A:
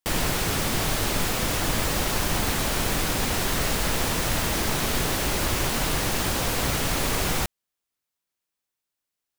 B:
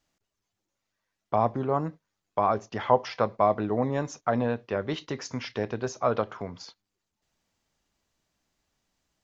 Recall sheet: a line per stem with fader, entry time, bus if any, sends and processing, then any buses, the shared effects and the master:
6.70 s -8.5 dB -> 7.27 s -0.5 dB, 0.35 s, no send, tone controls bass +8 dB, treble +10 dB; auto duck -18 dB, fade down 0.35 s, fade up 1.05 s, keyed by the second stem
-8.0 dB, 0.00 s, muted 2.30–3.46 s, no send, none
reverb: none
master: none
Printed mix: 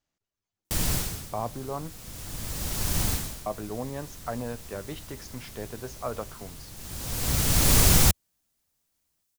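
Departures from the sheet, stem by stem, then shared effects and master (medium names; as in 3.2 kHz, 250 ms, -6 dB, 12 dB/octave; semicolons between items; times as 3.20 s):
stem A: entry 0.35 s -> 0.65 s; master: extra peaking EQ 80 Hz +3 dB 1.5 oct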